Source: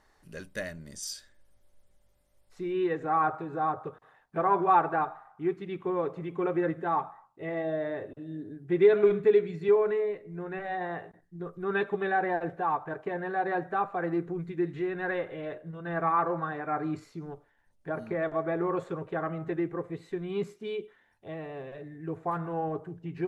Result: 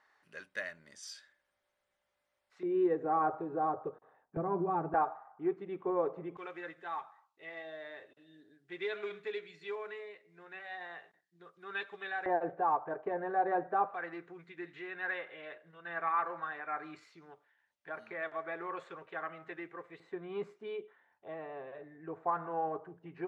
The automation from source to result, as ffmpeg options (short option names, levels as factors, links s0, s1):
-af "asetnsamples=n=441:p=0,asendcmd='2.63 bandpass f 460;4.37 bandpass f 190;4.94 bandpass f 660;6.37 bandpass f 3800;12.26 bandpass f 660;13.94 bandpass f 2400;20 bandpass f 980',bandpass=f=1700:t=q:w=0.9:csg=0"